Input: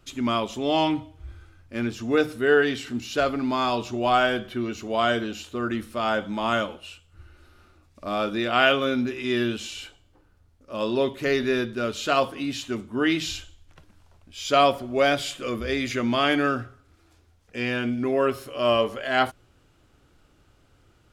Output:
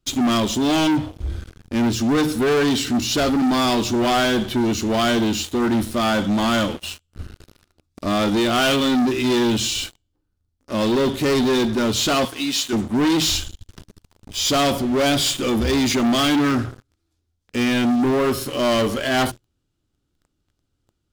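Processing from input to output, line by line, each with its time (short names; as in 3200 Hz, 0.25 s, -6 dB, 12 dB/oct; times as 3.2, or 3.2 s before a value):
12.25–12.73 HPF 970 Hz 6 dB/oct
whole clip: band shelf 1100 Hz -8 dB 2.9 oct; notches 60/120 Hz; sample leveller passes 5; gain -2.5 dB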